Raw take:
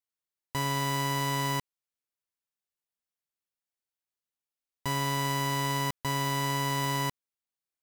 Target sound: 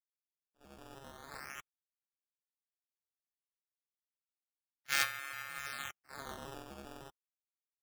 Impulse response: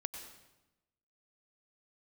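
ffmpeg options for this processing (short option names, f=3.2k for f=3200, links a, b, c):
-filter_complex "[0:a]asettb=1/sr,asplit=3[a][b][c];[a]atrim=end=1.594[d];[b]atrim=start=1.59:end=5.03,asetpts=PTS-STARTPTS,afade=t=in:d=0.004:c=qsin,afade=t=out:st=3.436:d=0.004:c=qsin,equalizer=f=6.3k:w=1.2:g=13[e];[c]atrim=start=5.026[f];[d][e]acrossfade=d=0.004:c1=hsin:c2=qsin[g];[g][f]acrossfade=d=0.004:c1=qsin:c2=hsin,afftfilt=real='re*lt(hypot(re,im),0.0316)':imag='im*lt(hypot(re,im),0.0316)':win_size=1024:overlap=0.75,aecho=1:1:85:0.178,afftdn=nr=33:nf=-41,equalizer=f=125:t=o:w=0.33:g=-8,equalizer=f=2k:t=o:w=0.33:g=7,equalizer=f=5k:t=o:w=0.33:g=-3,equalizer=f=8k:t=o:w=0.33:g=-11,acrossover=split=5100[h][i];[i]acompressor=threshold=-48dB:ratio=4:attack=1:release=60[j];[h][j]amix=inputs=2:normalize=0,agate=range=-41dB:threshold=-42dB:ratio=16:detection=peak,acrusher=samples=12:mix=1:aa=0.000001:lfo=1:lforange=19.2:lforate=0.33,dynaudnorm=f=250:g=13:m=12dB,volume=9dB"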